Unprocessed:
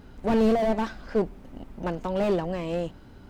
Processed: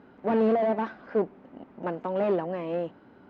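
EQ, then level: BPF 230–2000 Hz; 0.0 dB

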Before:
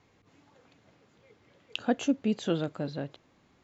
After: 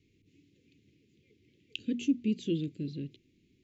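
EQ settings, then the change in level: elliptic band-stop 370–2400 Hz, stop band 50 dB; high shelf 2800 Hz -7 dB; notches 60/120/180/240 Hz; 0.0 dB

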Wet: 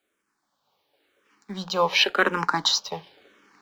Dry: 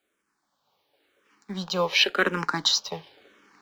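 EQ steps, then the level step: notches 60/120/180 Hz; dynamic EQ 900 Hz, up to +7 dB, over -40 dBFS, Q 1.4; 0.0 dB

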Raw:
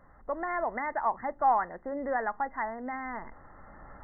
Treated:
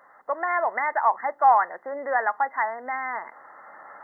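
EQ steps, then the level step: HPF 680 Hz 12 dB/oct; +9.0 dB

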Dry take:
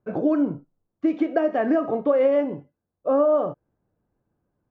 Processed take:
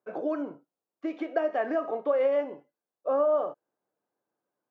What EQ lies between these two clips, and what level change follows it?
HPF 470 Hz 12 dB/oct; -3.5 dB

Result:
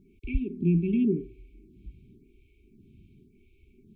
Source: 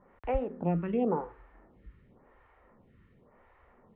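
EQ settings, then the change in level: brick-wall FIR band-stop 420–2200 Hz; notch 2900 Hz, Q 15; +7.0 dB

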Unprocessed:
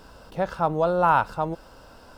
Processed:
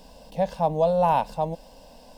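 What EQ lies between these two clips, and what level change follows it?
fixed phaser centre 360 Hz, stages 6; +2.5 dB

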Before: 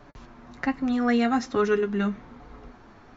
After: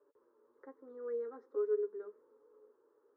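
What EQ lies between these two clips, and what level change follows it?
ladder band-pass 490 Hz, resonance 70%; fixed phaser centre 710 Hz, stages 6; -7.0 dB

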